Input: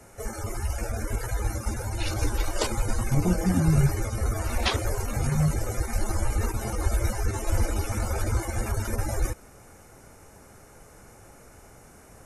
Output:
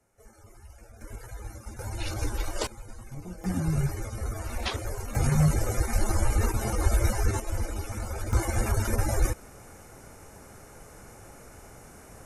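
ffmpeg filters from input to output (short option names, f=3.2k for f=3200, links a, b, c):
-af "asetnsamples=n=441:p=0,asendcmd='1.01 volume volume -12dB;1.79 volume volume -4dB;2.67 volume volume -17dB;3.44 volume volume -6dB;5.15 volume volume 1.5dB;7.4 volume volume -6dB;8.33 volume volume 2dB',volume=-20dB"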